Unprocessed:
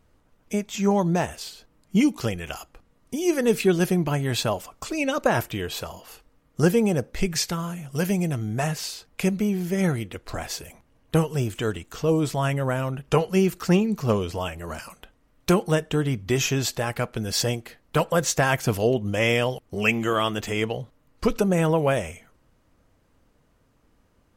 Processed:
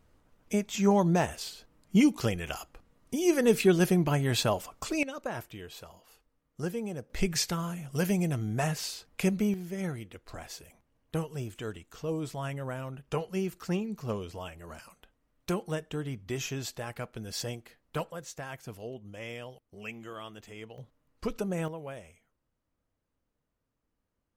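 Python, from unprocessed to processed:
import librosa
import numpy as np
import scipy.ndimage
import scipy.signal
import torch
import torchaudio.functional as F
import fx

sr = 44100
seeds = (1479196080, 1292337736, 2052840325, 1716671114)

y = fx.gain(x, sr, db=fx.steps((0.0, -2.5), (5.03, -14.5), (7.1, -4.0), (9.54, -11.5), (18.11, -19.5), (20.78, -11.0), (21.68, -19.5)))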